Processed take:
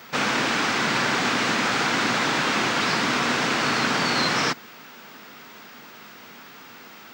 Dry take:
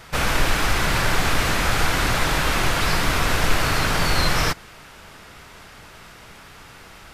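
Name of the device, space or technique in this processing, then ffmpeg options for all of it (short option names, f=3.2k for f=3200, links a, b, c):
old television with a line whistle: -af "highpass=f=160:w=0.5412,highpass=f=160:w=1.3066,equalizer=f=170:t=q:w=4:g=-4,equalizer=f=240:t=q:w=4:g=7,equalizer=f=610:t=q:w=4:g=-3,lowpass=f=7.1k:w=0.5412,lowpass=f=7.1k:w=1.3066,aeval=exprs='val(0)+0.00316*sin(2*PI*15625*n/s)':c=same"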